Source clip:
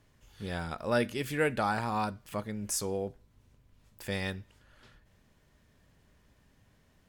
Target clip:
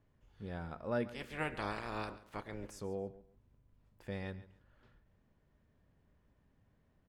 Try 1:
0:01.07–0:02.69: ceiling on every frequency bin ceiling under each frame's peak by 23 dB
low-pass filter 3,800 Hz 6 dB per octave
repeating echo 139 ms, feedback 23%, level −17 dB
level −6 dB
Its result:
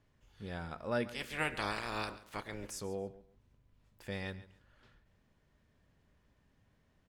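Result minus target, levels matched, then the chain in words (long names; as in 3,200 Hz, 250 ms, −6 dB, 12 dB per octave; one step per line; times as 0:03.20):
4,000 Hz band +5.5 dB
0:01.07–0:02.69: ceiling on every frequency bin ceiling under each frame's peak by 23 dB
low-pass filter 1,100 Hz 6 dB per octave
repeating echo 139 ms, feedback 23%, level −17 dB
level −6 dB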